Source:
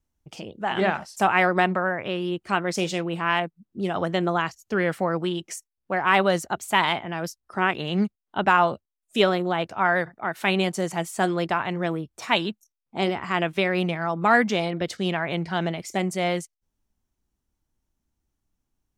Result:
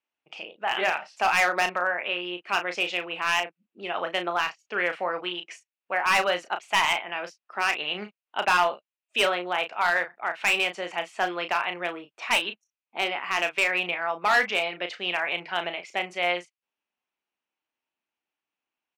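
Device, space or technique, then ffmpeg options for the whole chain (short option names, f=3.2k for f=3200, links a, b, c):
megaphone: -filter_complex "[0:a]highpass=590,lowpass=3.3k,equalizer=f=2.6k:t=o:w=0.55:g=10.5,asoftclip=type=hard:threshold=-15dB,asplit=2[a][b];[b]adelay=34,volume=-8.5dB[c];[a][c]amix=inputs=2:normalize=0,volume=-1dB"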